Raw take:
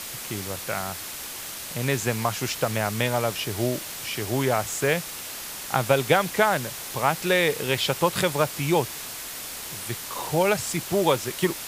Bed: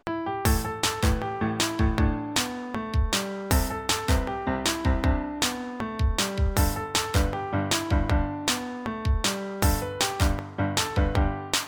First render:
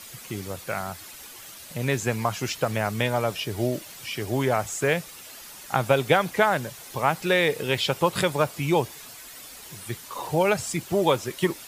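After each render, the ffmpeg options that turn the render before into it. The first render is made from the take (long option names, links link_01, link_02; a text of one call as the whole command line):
ffmpeg -i in.wav -af "afftdn=noise_reduction=10:noise_floor=-36" out.wav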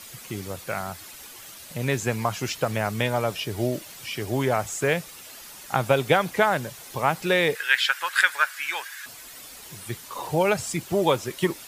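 ffmpeg -i in.wav -filter_complex "[0:a]asettb=1/sr,asplit=3[link_01][link_02][link_03];[link_01]atrim=end=7.554[link_04];[link_02]atrim=start=7.55:end=9.06,asetpts=PTS-STARTPTS,afade=type=in:duration=0.004:curve=qsin,afade=type=out:start_time=1.506:duration=0.004:curve=qsin,highpass=frequency=1600:width_type=q:width=7.2[link_05];[link_03]atrim=start=9.056[link_06];[link_04][link_05]acrossfade=duration=0.004:curve1=hsin:curve2=qsin[link_07];[link_07][link_06]acrossfade=duration=0.004:curve1=qsin:curve2=hsin" out.wav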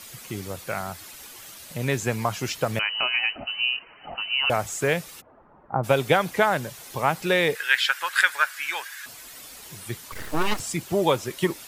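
ffmpeg -i in.wav -filter_complex "[0:a]asettb=1/sr,asplit=3[link_01][link_02][link_03];[link_01]atrim=end=2.794[link_04];[link_02]atrim=start=2.79:end=4.5,asetpts=PTS-STARTPTS,afade=type=in:duration=0.004:curve=qsin,afade=type=out:start_time=1.706:duration=0.004:curve=qsin,lowpass=frequency=2600:width_type=q:width=0.5098,lowpass=frequency=2600:width_type=q:width=0.6013,lowpass=frequency=2600:width_type=q:width=0.9,lowpass=frequency=2600:width_type=q:width=2.563,afreqshift=-3100[link_05];[link_03]atrim=start=4.496[link_06];[link_04][link_05]acrossfade=duration=0.004:curve1=hsin:curve2=qsin[link_07];[link_07][link_06]acrossfade=duration=0.004:curve1=qsin:curve2=hsin,asplit=3[link_08][link_09][link_10];[link_08]afade=type=out:start_time=5.2:duration=0.02[link_11];[link_09]lowpass=frequency=1100:width=0.5412,lowpass=frequency=1100:width=1.3066,afade=type=in:start_time=5.2:duration=0.02,afade=type=out:start_time=5.83:duration=0.02[link_12];[link_10]afade=type=in:start_time=5.83:duration=0.02[link_13];[link_11][link_12][link_13]amix=inputs=3:normalize=0,asettb=1/sr,asplit=3[link_14][link_15][link_16];[link_14]atrim=end=10.124[link_17];[link_15]atrim=start=10.12:end=10.6,asetpts=PTS-STARTPTS,afade=type=in:duration=0.004:curve=qsin,afade=type=out:start_time=0.476:duration=0.004:curve=qsin,aeval=exprs='abs(val(0))':channel_layout=same[link_18];[link_16]atrim=start=10.596[link_19];[link_17][link_18]acrossfade=duration=0.004:curve1=hsin:curve2=qsin[link_20];[link_20][link_19]acrossfade=duration=0.004:curve1=qsin:curve2=hsin" out.wav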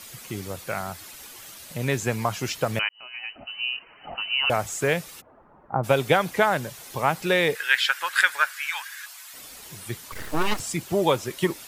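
ffmpeg -i in.wav -filter_complex "[0:a]asettb=1/sr,asplit=3[link_01][link_02][link_03];[link_01]atrim=end=8.534[link_04];[link_02]atrim=start=8.53:end=9.34,asetpts=PTS-STARTPTS,afade=type=in:duration=0.004:curve=qsin,afade=type=out:start_time=0.806:duration=0.004:curve=qsin,highpass=frequency=870:width=0.5412,highpass=frequency=870:width=1.3066[link_05];[link_03]atrim=start=9.336[link_06];[link_04][link_05]acrossfade=duration=0.004:curve1=hsin:curve2=qsin[link_07];[link_07][link_06]acrossfade=duration=0.004:curve1=qsin:curve2=hsin,asplit=2[link_08][link_09];[link_08]atrim=end=2.89,asetpts=PTS-STARTPTS,afade=type=out:start_time=2.886:duration=0.004:curve=hsin[link_10];[link_09]atrim=start=2.89,asetpts=PTS-STARTPTS,afade=type=in:duration=1.22[link_11];[link_10][link_11]concat=n=2:v=0:a=1" out.wav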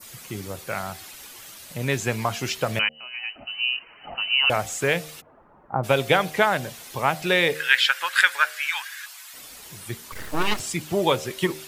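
ffmpeg -i in.wav -af "bandreject=frequency=76.6:width_type=h:width=4,bandreject=frequency=153.2:width_type=h:width=4,bandreject=frequency=229.8:width_type=h:width=4,bandreject=frequency=306.4:width_type=h:width=4,bandreject=frequency=383:width_type=h:width=4,bandreject=frequency=459.6:width_type=h:width=4,bandreject=frequency=536.2:width_type=h:width=4,bandreject=frequency=612.8:width_type=h:width=4,bandreject=frequency=689.4:width_type=h:width=4,bandreject=frequency=766:width_type=h:width=4,adynamicequalizer=threshold=0.0141:dfrequency=3000:dqfactor=0.88:tfrequency=3000:tqfactor=0.88:attack=5:release=100:ratio=0.375:range=2:mode=boostabove:tftype=bell" out.wav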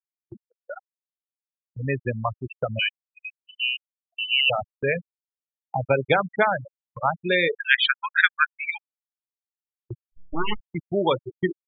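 ffmpeg -i in.wav -af "afftfilt=real='re*gte(hypot(re,im),0.2)':imag='im*gte(hypot(re,im),0.2)':win_size=1024:overlap=0.75,agate=range=-28dB:threshold=-39dB:ratio=16:detection=peak" out.wav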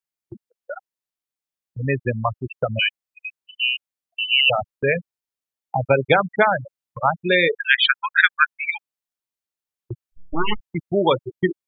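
ffmpeg -i in.wav -af "volume=4dB,alimiter=limit=-2dB:level=0:latency=1" out.wav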